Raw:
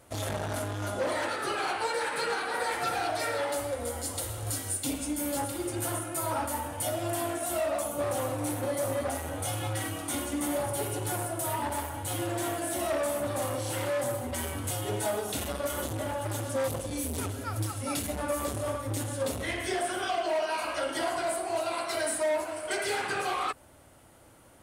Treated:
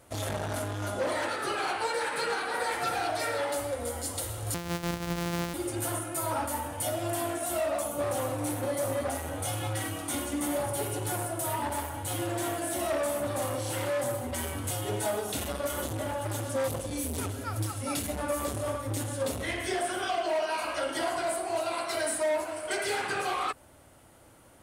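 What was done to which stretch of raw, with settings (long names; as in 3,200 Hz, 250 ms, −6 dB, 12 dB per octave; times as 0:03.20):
0:04.54–0:05.54: samples sorted by size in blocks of 256 samples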